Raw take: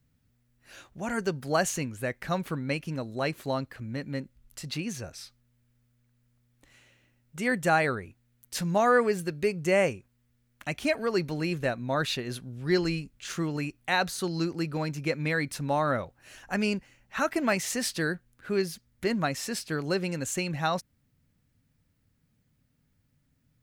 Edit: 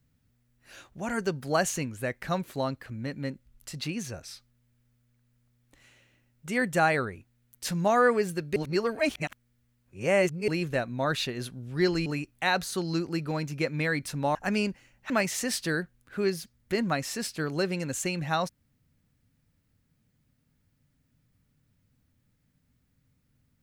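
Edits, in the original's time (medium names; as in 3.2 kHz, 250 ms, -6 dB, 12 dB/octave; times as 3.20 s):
2.44–3.34 s: delete
9.46–11.38 s: reverse
12.96–13.52 s: delete
15.81–16.42 s: delete
17.17–17.42 s: delete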